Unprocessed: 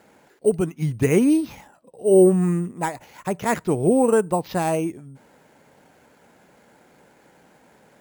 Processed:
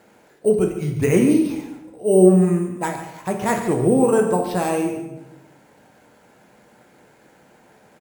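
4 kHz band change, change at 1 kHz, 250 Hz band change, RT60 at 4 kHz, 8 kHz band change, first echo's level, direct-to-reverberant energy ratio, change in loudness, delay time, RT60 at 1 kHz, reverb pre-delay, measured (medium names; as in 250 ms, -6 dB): +2.0 dB, +1.5 dB, +2.5 dB, 0.75 s, +1.5 dB, -12.5 dB, 2.5 dB, +2.0 dB, 142 ms, 0.85 s, 6 ms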